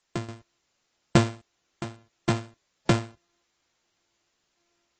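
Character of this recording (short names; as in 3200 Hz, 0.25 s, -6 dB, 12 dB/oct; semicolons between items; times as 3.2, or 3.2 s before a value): a buzz of ramps at a fixed pitch in blocks of 128 samples; random-step tremolo, depth 90%; a quantiser's noise floor 12-bit, dither triangular; AAC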